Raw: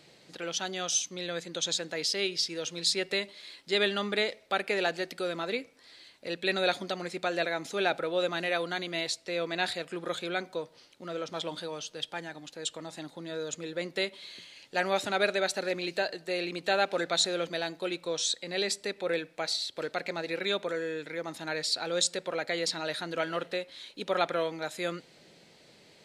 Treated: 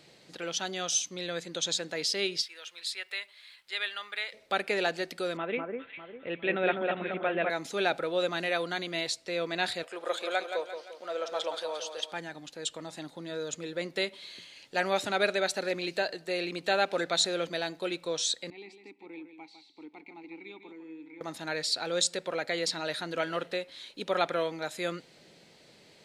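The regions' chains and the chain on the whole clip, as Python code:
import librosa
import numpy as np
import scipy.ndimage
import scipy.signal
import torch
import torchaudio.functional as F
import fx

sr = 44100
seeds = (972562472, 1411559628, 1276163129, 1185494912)

y = fx.highpass(x, sr, hz=1400.0, slope=12, at=(2.41, 4.32), fade=0.02)
y = fx.peak_eq(y, sr, hz=6100.0, db=-12.0, octaves=1.3, at=(2.41, 4.32), fade=0.02)
y = fx.dmg_crackle(y, sr, seeds[0], per_s=490.0, level_db=-64.0, at=(2.41, 4.32), fade=0.02)
y = fx.chain(y, sr, fx.steep_lowpass(hz=3300.0, slope=72),
    fx.echo_alternate(ms=201, hz=1600.0, feedback_pct=58, wet_db=-3), at=(5.37, 7.5))
y = fx.chain(y, sr, fx.highpass_res(hz=590.0, q=1.7),
    fx.echo_feedback(ms=173, feedback_pct=46, wet_db=-8.0), at=(9.83, 12.12))
y = fx.chain(y, sr, fx.vowel_filter(vowel='u'),
    fx.echo_single(ms=154, db=-9.5), at=(18.5, 21.21))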